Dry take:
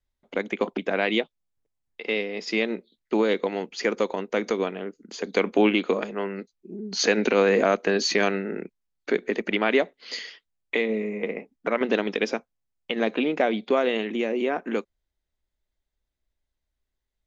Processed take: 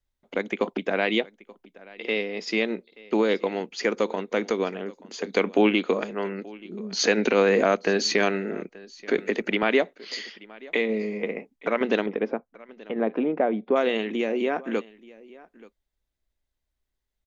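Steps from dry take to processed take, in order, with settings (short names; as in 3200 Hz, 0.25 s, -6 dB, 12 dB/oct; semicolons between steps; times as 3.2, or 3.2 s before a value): 12.06–13.76 LPF 1200 Hz 12 dB/oct; on a send: echo 0.88 s -22 dB; 9.18–9.63 on the sum: three-band squash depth 40%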